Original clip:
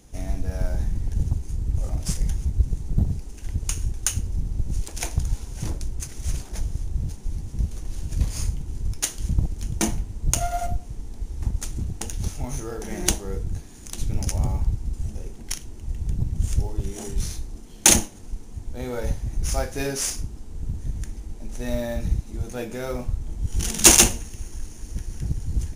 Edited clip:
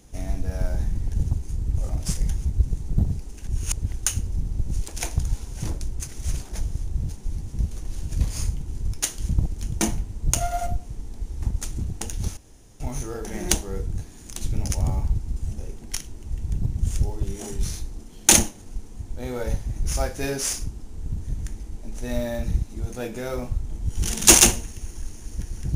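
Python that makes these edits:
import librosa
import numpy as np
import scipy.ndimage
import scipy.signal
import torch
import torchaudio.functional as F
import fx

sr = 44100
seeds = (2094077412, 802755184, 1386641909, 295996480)

y = fx.edit(x, sr, fx.reverse_span(start_s=3.46, length_s=0.49),
    fx.insert_room_tone(at_s=12.37, length_s=0.43), tone=tone)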